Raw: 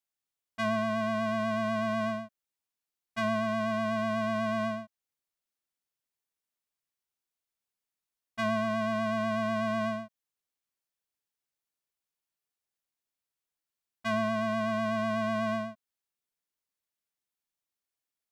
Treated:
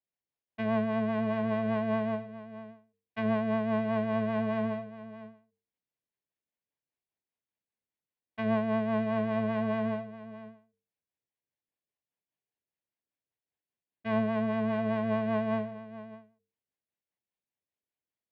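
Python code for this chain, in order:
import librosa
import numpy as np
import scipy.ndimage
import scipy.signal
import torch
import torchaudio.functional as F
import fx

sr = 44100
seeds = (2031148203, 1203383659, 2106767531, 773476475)

y = np.where(x < 0.0, 10.0 ** (-7.0 / 20.0) * x, x)
y = scipy.signal.sosfilt(scipy.signal.butter(2, 61.0, 'highpass', fs=sr, output='sos'), y)
y = fx.peak_eq(y, sr, hz=1300.0, db=-14.5, octaves=0.28)
y = fx.hum_notches(y, sr, base_hz=50, count=9)
y = fx.rotary(y, sr, hz=5.0)
y = fx.air_absorb(y, sr, metres=470.0)
y = y + 10.0 ** (-15.0 / 20.0) * np.pad(y, (int(638 * sr / 1000.0), 0))[:len(y)]
y = fx.end_taper(y, sr, db_per_s=140.0)
y = y * librosa.db_to_amplitude(7.5)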